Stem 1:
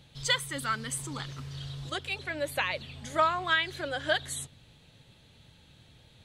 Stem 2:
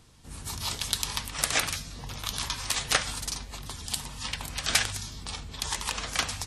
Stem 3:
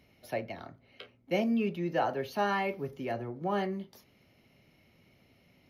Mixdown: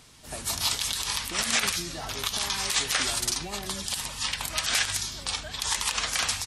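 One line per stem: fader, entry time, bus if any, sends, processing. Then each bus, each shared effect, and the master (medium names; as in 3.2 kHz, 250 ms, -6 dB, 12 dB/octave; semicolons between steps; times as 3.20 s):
-15.5 dB, 1.35 s, no send, none
+2.5 dB, 0.00 s, no send, tilt shelf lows -5.5 dB, about 670 Hz
+1.5 dB, 0.00 s, no send, compression, threshold -38 dBFS, peak gain reduction 13.5 dB; comb of notches 520 Hz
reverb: none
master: peak limiter -13 dBFS, peak gain reduction 16 dB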